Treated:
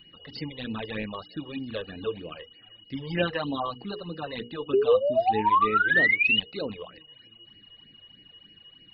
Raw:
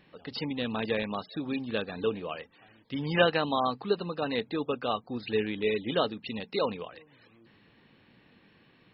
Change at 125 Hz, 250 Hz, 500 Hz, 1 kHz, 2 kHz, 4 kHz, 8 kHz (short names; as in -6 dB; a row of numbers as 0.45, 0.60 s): 0.0 dB, -1.0 dB, +2.0 dB, +7.0 dB, +10.0 dB, +3.0 dB, n/a